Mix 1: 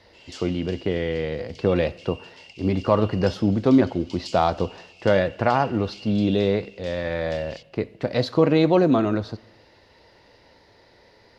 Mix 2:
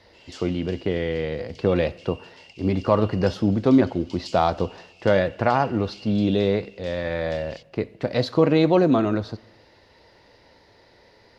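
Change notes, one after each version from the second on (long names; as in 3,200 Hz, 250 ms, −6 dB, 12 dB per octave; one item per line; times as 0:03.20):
background: send off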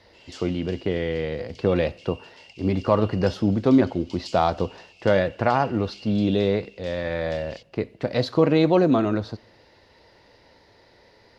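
speech: send −6.0 dB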